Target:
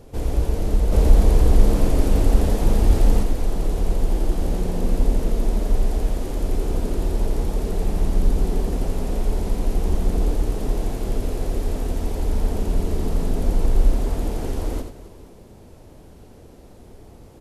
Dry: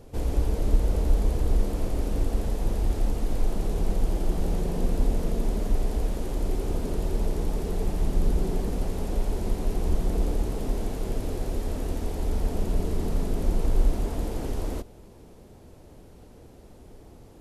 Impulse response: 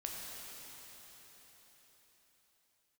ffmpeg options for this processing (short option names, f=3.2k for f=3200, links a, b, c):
-filter_complex "[0:a]asettb=1/sr,asplit=3[a][b][c];[a]atrim=end=0.924[d];[b]atrim=start=0.92:end=3.23,asetpts=PTS-STARTPTS,afade=t=in:d=0.004:c=qsin,afade=t=out:st=2.306:d=0.004:c=qsin,acontrast=36[e];[c]atrim=start=3.226[f];[d][e]acrossfade=d=0.004:c1=hsin:c2=qsin[g];[g][f]acrossfade=d=0.004:c1=qsin:c2=hsin,aecho=1:1:83|266|475:0.447|0.15|0.1,volume=3dB"